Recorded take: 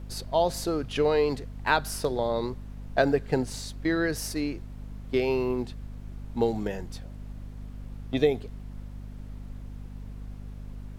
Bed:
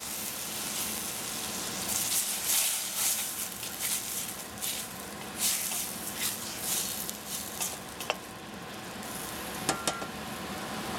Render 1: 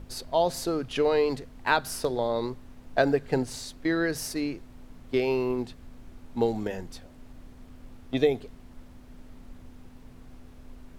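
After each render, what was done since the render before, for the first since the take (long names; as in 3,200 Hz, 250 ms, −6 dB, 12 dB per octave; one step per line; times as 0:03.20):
mains-hum notches 50/100/150/200 Hz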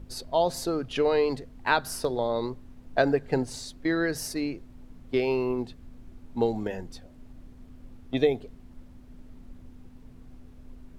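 broadband denoise 6 dB, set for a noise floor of −50 dBFS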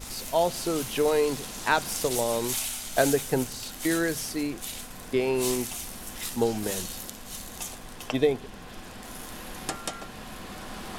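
mix in bed −3.5 dB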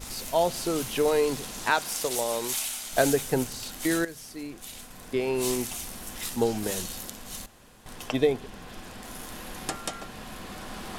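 0:01.70–0:02.93: low-shelf EQ 250 Hz −11.5 dB
0:04.05–0:05.65: fade in, from −13.5 dB
0:07.46–0:07.86: fill with room tone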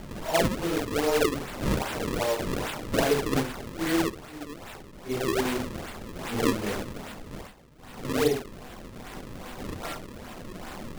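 random phases in long frames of 200 ms
sample-and-hold swept by an LFO 34×, swing 160% 2.5 Hz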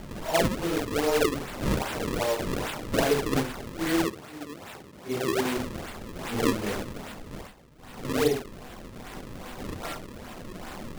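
0:04.05–0:05.57: high-pass filter 89 Hz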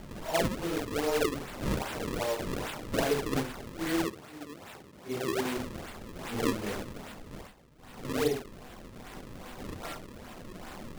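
level −4.5 dB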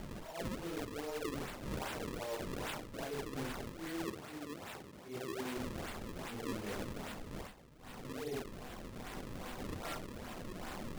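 reversed playback
downward compressor 16 to 1, threshold −37 dBFS, peak gain reduction 15.5 dB
reversed playback
level that may rise only so fast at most 120 dB per second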